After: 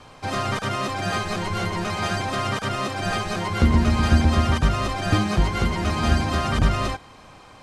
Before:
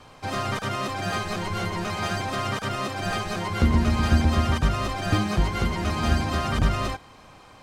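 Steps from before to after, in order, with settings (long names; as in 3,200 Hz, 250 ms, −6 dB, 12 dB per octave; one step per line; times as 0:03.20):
low-pass filter 12,000 Hz 24 dB per octave
level +2.5 dB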